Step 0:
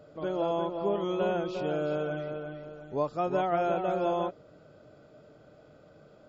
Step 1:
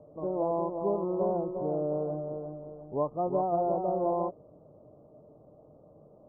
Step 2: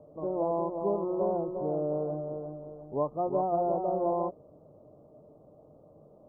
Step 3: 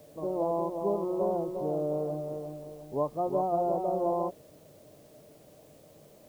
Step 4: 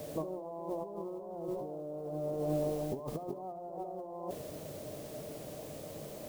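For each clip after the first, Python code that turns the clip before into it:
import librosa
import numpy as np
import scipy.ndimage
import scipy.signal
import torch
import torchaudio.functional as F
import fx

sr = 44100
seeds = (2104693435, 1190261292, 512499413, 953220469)

y1 = scipy.signal.sosfilt(scipy.signal.butter(12, 1100.0, 'lowpass', fs=sr, output='sos'), x)
y2 = fx.hum_notches(y1, sr, base_hz=60, count=3)
y3 = fx.dmg_noise_colour(y2, sr, seeds[0], colour='white', level_db=-64.0)
y4 = fx.over_compress(y3, sr, threshold_db=-41.0, ratio=-1.0)
y4 = fx.echo_feedback(y4, sr, ms=70, feedback_pct=51, wet_db=-16.5)
y4 = y4 * librosa.db_to_amplitude(1.5)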